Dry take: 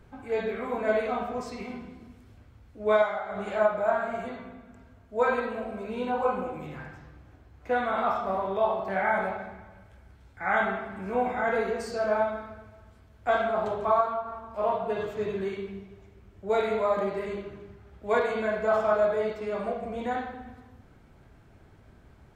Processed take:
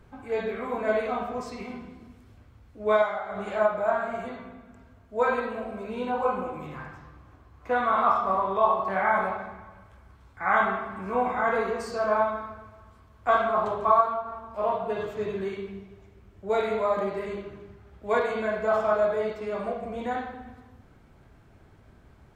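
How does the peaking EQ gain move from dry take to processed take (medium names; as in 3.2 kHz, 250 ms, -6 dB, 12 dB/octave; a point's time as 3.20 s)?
peaking EQ 1.1 kHz 0.32 oct
6.28 s +3 dB
6.80 s +12.5 dB
13.62 s +12.5 dB
14.22 s +2 dB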